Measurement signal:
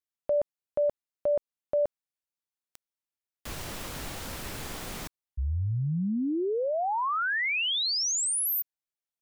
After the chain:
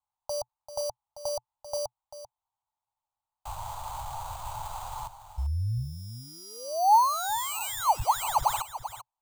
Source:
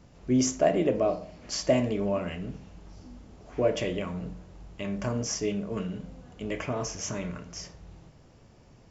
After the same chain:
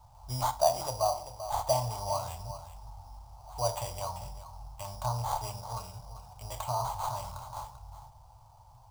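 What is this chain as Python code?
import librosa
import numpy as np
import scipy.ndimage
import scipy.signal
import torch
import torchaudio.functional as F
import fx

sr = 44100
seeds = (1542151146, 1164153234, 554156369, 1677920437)

y = x + 10.0 ** (-12.0 / 20.0) * np.pad(x, (int(391 * sr / 1000.0), 0))[:len(x)]
y = fx.sample_hold(y, sr, seeds[0], rate_hz=5300.0, jitter_pct=0)
y = fx.curve_eq(y, sr, hz=(120.0, 190.0, 400.0, 870.0, 1800.0, 5000.0), db=(0, -26, -27, 13, -18, 0))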